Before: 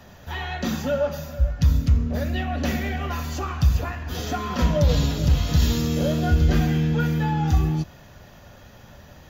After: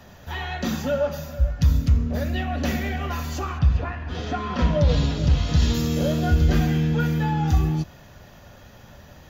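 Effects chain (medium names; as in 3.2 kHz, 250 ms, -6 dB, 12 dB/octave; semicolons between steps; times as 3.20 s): 3.58–5.73 s: low-pass 2.7 kHz -> 6.7 kHz 12 dB/octave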